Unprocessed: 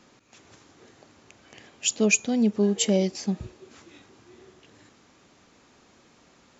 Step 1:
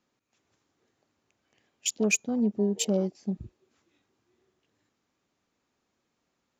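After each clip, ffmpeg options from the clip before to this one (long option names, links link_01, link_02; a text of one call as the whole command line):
ffmpeg -i in.wav -af "afwtdn=0.0251,volume=-4dB" out.wav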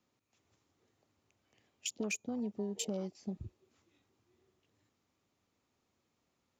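ffmpeg -i in.wav -filter_complex "[0:a]equalizer=frequency=1600:width_type=o:width=0.27:gain=-4.5,acrossover=split=380|880[link_01][link_02][link_03];[link_01]acompressor=threshold=-38dB:ratio=4[link_04];[link_02]acompressor=threshold=-43dB:ratio=4[link_05];[link_03]acompressor=threshold=-35dB:ratio=4[link_06];[link_04][link_05][link_06]amix=inputs=3:normalize=0,equalizer=frequency=91:width_type=o:width=0.78:gain=7.5,volume=-2.5dB" out.wav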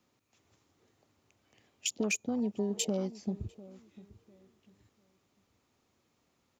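ffmpeg -i in.wav -filter_complex "[0:a]asplit=2[link_01][link_02];[link_02]adelay=698,lowpass=frequency=1000:poles=1,volume=-18dB,asplit=2[link_03][link_04];[link_04]adelay=698,lowpass=frequency=1000:poles=1,volume=0.29,asplit=2[link_05][link_06];[link_06]adelay=698,lowpass=frequency=1000:poles=1,volume=0.29[link_07];[link_01][link_03][link_05][link_07]amix=inputs=4:normalize=0,volume=5.5dB" out.wav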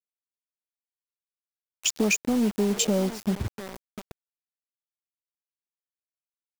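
ffmpeg -i in.wav -filter_complex "[0:a]asplit=2[link_01][link_02];[link_02]volume=32.5dB,asoftclip=hard,volume=-32.5dB,volume=-4dB[link_03];[link_01][link_03]amix=inputs=2:normalize=0,acrusher=bits=6:mix=0:aa=0.000001,volume=5.5dB" out.wav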